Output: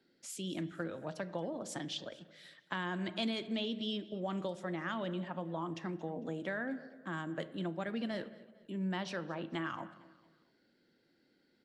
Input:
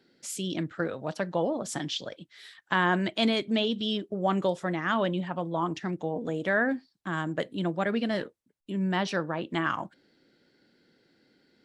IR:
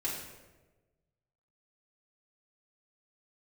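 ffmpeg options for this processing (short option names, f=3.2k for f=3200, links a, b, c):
-filter_complex "[0:a]asplit=2[a][b];[1:a]atrim=start_sample=2205,lowpass=4.6k[c];[b][c]afir=irnorm=-1:irlink=0,volume=-15.5dB[d];[a][d]amix=inputs=2:normalize=0,acrossover=split=180|3000[e][f][g];[f]acompressor=threshold=-27dB:ratio=6[h];[e][h][g]amix=inputs=3:normalize=0,aecho=1:1:226|452|678:0.0891|0.0365|0.015,volume=-8.5dB"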